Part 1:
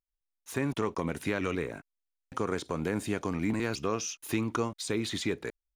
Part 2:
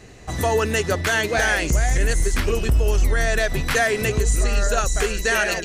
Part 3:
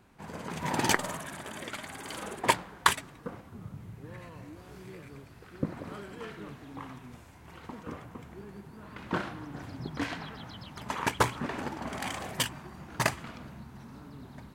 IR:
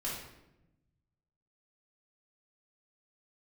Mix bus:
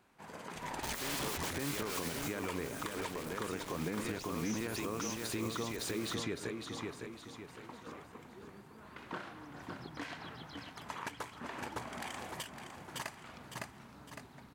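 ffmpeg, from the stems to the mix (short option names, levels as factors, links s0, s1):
-filter_complex "[0:a]adelay=450,volume=0.891,asplit=2[s0][s1];[s1]volume=0.708[s2];[1:a]aeval=exprs='(mod(12.6*val(0)+1,2)-1)/12.6':c=same,adelay=550,volume=0.282,afade=t=out:st=2.11:d=0.26:silence=0.316228[s3];[2:a]volume=0.631,asplit=2[s4][s5];[s5]volume=0.266[s6];[s0][s4]amix=inputs=2:normalize=0,lowshelf=f=230:g=-11.5,acompressor=threshold=0.00794:ratio=2,volume=1[s7];[s2][s6]amix=inputs=2:normalize=0,aecho=0:1:558|1116|1674|2232|2790|3348:1|0.42|0.176|0.0741|0.0311|0.0131[s8];[s3][s7][s8]amix=inputs=3:normalize=0,alimiter=level_in=1.41:limit=0.0631:level=0:latency=1:release=140,volume=0.708"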